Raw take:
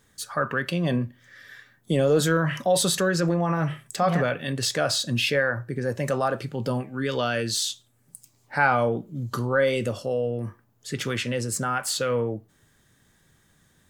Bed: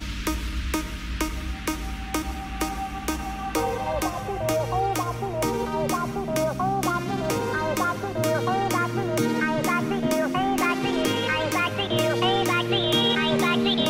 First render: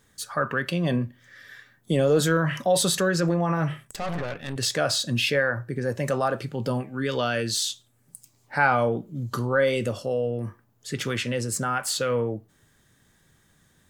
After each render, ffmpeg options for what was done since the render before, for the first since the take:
-filter_complex "[0:a]asettb=1/sr,asplit=3[a][b][c];[a]atrim=end=3.854[d];[b]atrim=start=3.85:end=4.56,asetpts=PTS-STARTPTS,afade=t=in:d=0.004:c=qsin,afade=t=out:st=0.706:d=0.004:c=qsin,aeval=exprs='(tanh(22.4*val(0)+0.8)-tanh(0.8))/22.4':c=same[e];[c]atrim=start=4.556[f];[d][e]acrossfade=d=0.004:c1=hsin:c2=qsin[g];[g][f]acrossfade=d=0.004:c1=qsin:c2=hsin"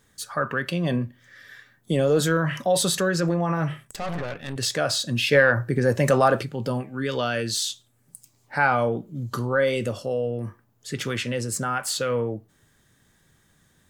-filter_complex "[0:a]asplit=3[a][b][c];[a]afade=t=out:st=5.31:d=0.02[d];[b]acontrast=70,afade=t=in:st=5.31:d=0.02,afade=t=out:st=6.42:d=0.02[e];[c]afade=t=in:st=6.42:d=0.02[f];[d][e][f]amix=inputs=3:normalize=0"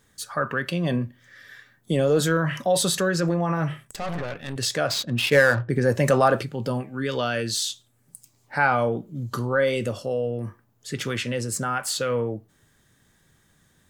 -filter_complex "[0:a]asettb=1/sr,asplit=3[a][b][c];[a]atrim=end=4.874[d];[b]atrim=start=4.87:end=5.7,asetpts=PTS-STARTPTS,afade=t=in:d=0.004:c=qsin,afade=t=out:st=0.826:d=0.004:c=qsin,adynamicsmooth=sensitivity=5.5:basefreq=1.1k[e];[c]atrim=start=5.696[f];[d][e]acrossfade=d=0.004:c1=hsin:c2=qsin[g];[g][f]acrossfade=d=0.004:c1=qsin:c2=hsin"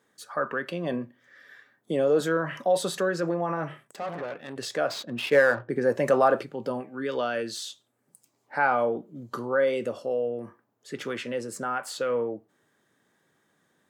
-af "highpass=300,highshelf=f=2.2k:g=-12"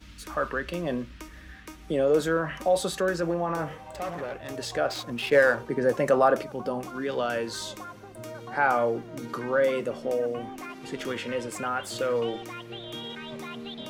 -filter_complex "[1:a]volume=-16.5dB[a];[0:a][a]amix=inputs=2:normalize=0"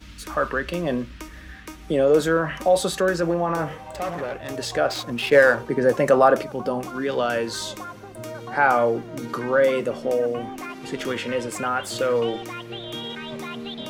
-af "volume=5dB"

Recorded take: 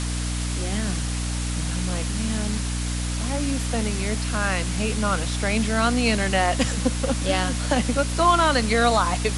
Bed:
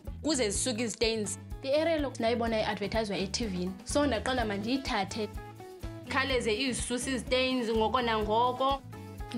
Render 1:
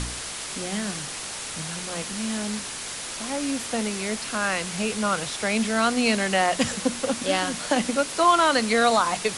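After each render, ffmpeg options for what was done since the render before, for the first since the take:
-af "bandreject=f=60:t=h:w=4,bandreject=f=120:t=h:w=4,bandreject=f=180:t=h:w=4,bandreject=f=240:t=h:w=4,bandreject=f=300:t=h:w=4"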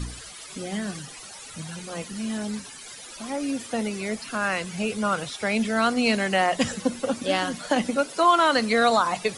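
-af "afftdn=nr=15:nf=-34"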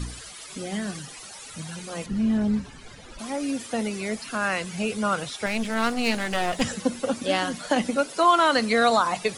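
-filter_complex "[0:a]asettb=1/sr,asplit=3[a][b][c];[a]atrim=end=2.064[d];[b]atrim=start=2.06:end=3.19,asetpts=PTS-STARTPTS,afade=t=in:d=0.004:c=qsin,afade=t=out:st=1.126:d=0.004:c=qsin,aemphasis=mode=reproduction:type=riaa[e];[c]atrim=start=3.186[f];[d][e]acrossfade=d=0.004:c1=hsin:c2=qsin[g];[g][f]acrossfade=d=0.004:c1=qsin:c2=hsin,asettb=1/sr,asplit=3[h][i][j];[h]atrim=end=5.464[k];[i]atrim=start=5.46:end=6.62,asetpts=PTS-STARTPTS,afade=t=in:d=0.004:c=qsin,afade=t=out:st=1.156:d=0.004:c=qsin,aeval=exprs='clip(val(0),-1,0.0251)':c=same[l];[j]atrim=start=6.616[m];[k][l]acrossfade=d=0.004:c1=hsin:c2=qsin[n];[n][m]acrossfade=d=0.004:c1=qsin:c2=hsin"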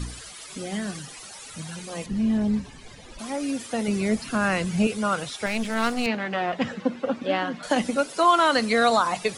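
-filter_complex "[0:a]asettb=1/sr,asplit=3[a][b][c];[a]atrim=end=1.854[d];[b]atrim=start=1.85:end=3.19,asetpts=PTS-STARTPTS,afade=t=in:d=0.004:c=qsin,afade=t=out:st=1.336:d=0.004:c=qsin,equalizer=f=1.4k:w=6.4:g=-8[e];[c]atrim=start=3.186[f];[d][e]acrossfade=d=0.004:c1=hsin:c2=qsin[g];[g][f]acrossfade=d=0.004:c1=qsin:c2=hsin,asettb=1/sr,asplit=3[h][i][j];[h]atrim=end=3.884[k];[i]atrim=start=3.88:end=4.87,asetpts=PTS-STARTPTS,afade=t=in:d=0.004:c=qsin,afade=t=out:st=0.986:d=0.004:c=qsin,lowshelf=f=320:g=11.5[l];[j]atrim=start=4.866[m];[k][l]acrossfade=d=0.004:c1=hsin:c2=qsin[n];[n][m]acrossfade=d=0.004:c1=qsin:c2=hsin,asettb=1/sr,asplit=3[o][p][q];[o]atrim=end=6.064[r];[p]atrim=start=6.06:end=7.63,asetpts=PTS-STARTPTS,afade=t=in:d=0.004:c=qsin,afade=t=out:st=1.566:d=0.004:c=qsin,highpass=130,lowpass=2.6k[s];[q]atrim=start=7.626[t];[r][s]acrossfade=d=0.004:c1=hsin:c2=qsin[u];[u][t]acrossfade=d=0.004:c1=qsin:c2=hsin"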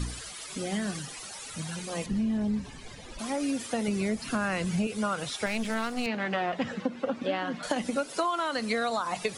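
-af "acompressor=threshold=-25dB:ratio=12"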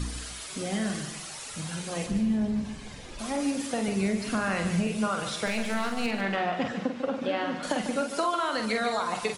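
-filter_complex "[0:a]asplit=2[a][b];[b]adelay=46,volume=-6dB[c];[a][c]amix=inputs=2:normalize=0,aecho=1:1:147|296:0.335|0.119"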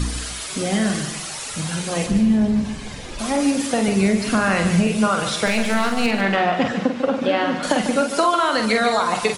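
-af "volume=9.5dB"

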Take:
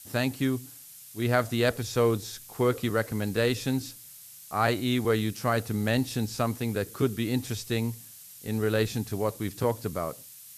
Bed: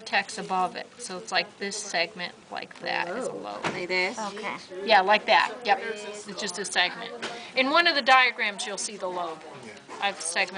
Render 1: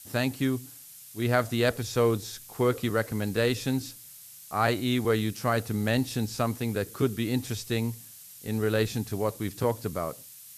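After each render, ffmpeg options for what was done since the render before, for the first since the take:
-af anull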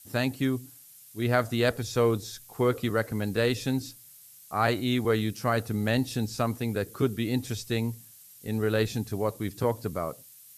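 -af "afftdn=nr=6:nf=-48"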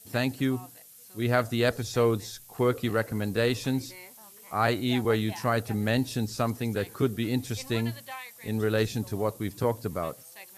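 -filter_complex "[1:a]volume=-22.5dB[a];[0:a][a]amix=inputs=2:normalize=0"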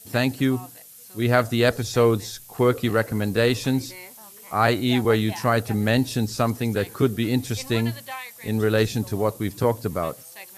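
-af "volume=5.5dB"

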